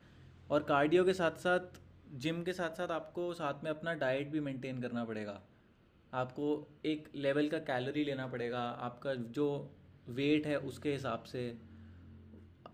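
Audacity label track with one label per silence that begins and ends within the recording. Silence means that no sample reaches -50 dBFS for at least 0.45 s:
5.410000	6.130000	silence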